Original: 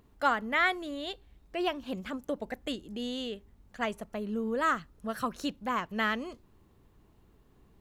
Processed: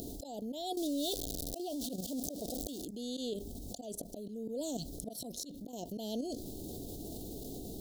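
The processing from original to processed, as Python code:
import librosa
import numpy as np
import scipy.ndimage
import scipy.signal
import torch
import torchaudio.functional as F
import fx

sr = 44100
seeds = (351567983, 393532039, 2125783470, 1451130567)

y = fx.zero_step(x, sr, step_db=-36.0, at=(0.77, 2.85))
y = fx.auto_swell(y, sr, attack_ms=749.0)
y = fx.level_steps(y, sr, step_db=13)
y = fx.low_shelf(y, sr, hz=200.0, db=-10.5)
y = fx.auto_swell(y, sr, attack_ms=216.0)
y = scipy.signal.sosfilt(scipy.signal.cheby2(4, 50, [1100.0, 2300.0], 'bandstop', fs=sr, output='sos'), y)
y = fx.high_shelf(y, sr, hz=3700.0, db=8.5)
y = fx.small_body(y, sr, hz=(280.0, 710.0), ring_ms=45, db=6)
y = fx.env_flatten(y, sr, amount_pct=70)
y = F.gain(torch.from_numpy(y), 3.5).numpy()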